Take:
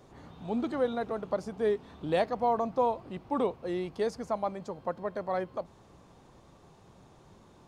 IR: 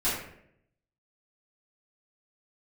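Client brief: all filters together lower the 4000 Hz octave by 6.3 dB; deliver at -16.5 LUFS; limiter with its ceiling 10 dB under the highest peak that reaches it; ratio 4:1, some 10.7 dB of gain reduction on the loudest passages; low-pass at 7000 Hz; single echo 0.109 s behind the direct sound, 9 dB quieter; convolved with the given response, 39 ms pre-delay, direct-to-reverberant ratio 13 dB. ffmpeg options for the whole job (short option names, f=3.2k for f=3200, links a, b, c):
-filter_complex "[0:a]lowpass=7k,equalizer=f=4k:t=o:g=-7.5,acompressor=threshold=-36dB:ratio=4,alimiter=level_in=9.5dB:limit=-24dB:level=0:latency=1,volume=-9.5dB,aecho=1:1:109:0.355,asplit=2[a][b];[1:a]atrim=start_sample=2205,adelay=39[c];[b][c]afir=irnorm=-1:irlink=0,volume=-23dB[d];[a][d]amix=inputs=2:normalize=0,volume=26.5dB"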